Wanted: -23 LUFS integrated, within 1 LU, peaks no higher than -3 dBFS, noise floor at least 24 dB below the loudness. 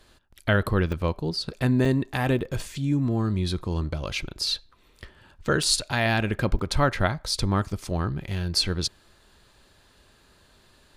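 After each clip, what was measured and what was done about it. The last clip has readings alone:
dropouts 5; longest dropout 3.3 ms; loudness -26.0 LUFS; peak level -9.0 dBFS; loudness target -23.0 LUFS
-> interpolate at 0.92/1.85/2.39/5.63/6.59 s, 3.3 ms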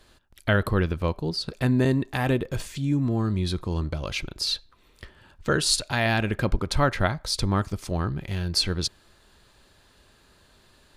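dropouts 0; loudness -26.0 LUFS; peak level -9.0 dBFS; loudness target -23.0 LUFS
-> trim +3 dB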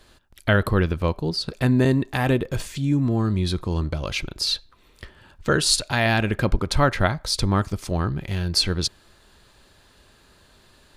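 loudness -23.0 LUFS; peak level -6.0 dBFS; noise floor -56 dBFS

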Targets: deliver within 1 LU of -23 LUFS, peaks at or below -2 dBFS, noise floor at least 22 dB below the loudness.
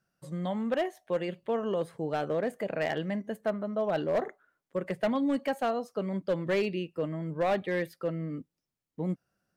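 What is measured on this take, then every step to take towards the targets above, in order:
clipped samples 1.1%; clipping level -22.0 dBFS; loudness -32.0 LUFS; peak level -22.0 dBFS; loudness target -23.0 LUFS
-> clip repair -22 dBFS; trim +9 dB

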